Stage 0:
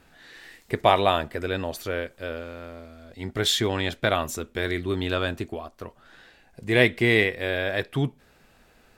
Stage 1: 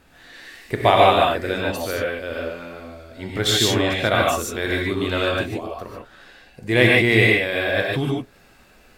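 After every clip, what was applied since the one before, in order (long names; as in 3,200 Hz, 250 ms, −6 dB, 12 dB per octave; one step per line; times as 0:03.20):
reverb whose tail is shaped and stops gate 170 ms rising, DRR −3 dB
level +1.5 dB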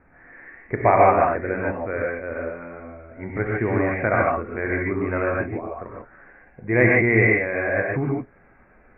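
Butterworth low-pass 2,300 Hz 96 dB per octave
level −1 dB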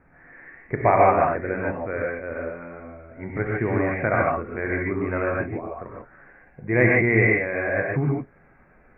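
parametric band 150 Hz +7 dB 0.28 octaves
level −1.5 dB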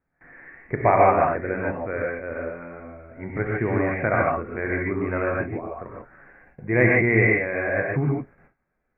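noise gate with hold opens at −43 dBFS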